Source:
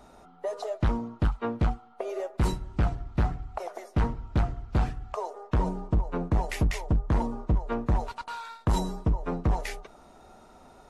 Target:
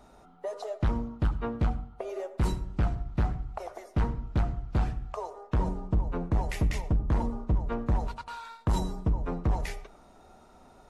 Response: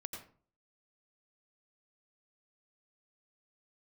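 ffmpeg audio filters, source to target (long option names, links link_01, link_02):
-filter_complex "[0:a]asplit=2[link_01][link_02];[1:a]atrim=start_sample=2205,lowshelf=frequency=270:gain=8[link_03];[link_02][link_03]afir=irnorm=-1:irlink=0,volume=-9dB[link_04];[link_01][link_04]amix=inputs=2:normalize=0,volume=-5dB"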